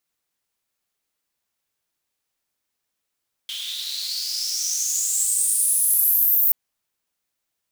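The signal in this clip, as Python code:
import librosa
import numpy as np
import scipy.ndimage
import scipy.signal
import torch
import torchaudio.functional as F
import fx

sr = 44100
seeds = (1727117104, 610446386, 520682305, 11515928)

y = fx.riser_noise(sr, seeds[0], length_s=3.03, colour='pink', kind='highpass', start_hz=3200.0, end_hz=15000.0, q=7.4, swell_db=19, law='exponential')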